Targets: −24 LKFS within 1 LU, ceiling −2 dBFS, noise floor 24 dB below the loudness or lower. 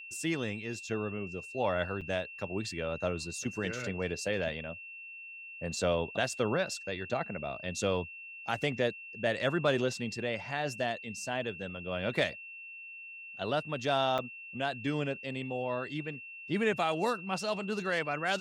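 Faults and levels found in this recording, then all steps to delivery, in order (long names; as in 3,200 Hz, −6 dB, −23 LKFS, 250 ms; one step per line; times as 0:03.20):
number of dropouts 2; longest dropout 6.1 ms; interfering tone 2,700 Hz; level of the tone −44 dBFS; integrated loudness −33.5 LKFS; sample peak −14.5 dBFS; target loudness −24.0 LKFS
→ repair the gap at 0:02.01/0:14.18, 6.1 ms
notch filter 2,700 Hz, Q 30
level +9.5 dB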